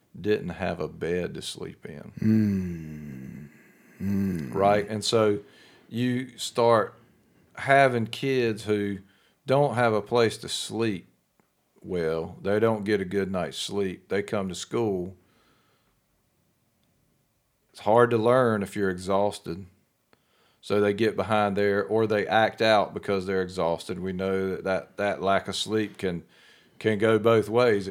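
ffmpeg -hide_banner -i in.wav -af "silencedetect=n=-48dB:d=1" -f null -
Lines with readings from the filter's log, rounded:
silence_start: 15.14
silence_end: 17.75 | silence_duration: 2.60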